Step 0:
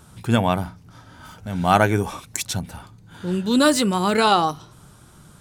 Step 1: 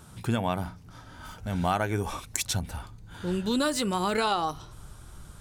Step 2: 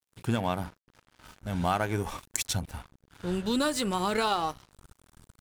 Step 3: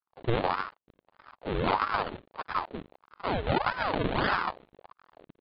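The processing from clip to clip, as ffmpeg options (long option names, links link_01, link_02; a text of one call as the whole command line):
ffmpeg -i in.wav -af "asubboost=boost=7:cutoff=63,acompressor=threshold=-22dB:ratio=5,volume=-1.5dB" out.wav
ffmpeg -i in.wav -af "aeval=exprs='sgn(val(0))*max(abs(val(0))-0.00794,0)':channel_layout=same" out.wav
ffmpeg -i in.wav -af "aresample=8000,acrusher=samples=10:mix=1:aa=0.000001:lfo=1:lforange=10:lforate=2.3,aresample=44100,aeval=exprs='val(0)*sin(2*PI*750*n/s+750*0.7/1.6*sin(2*PI*1.6*n/s))':channel_layout=same,volume=3.5dB" out.wav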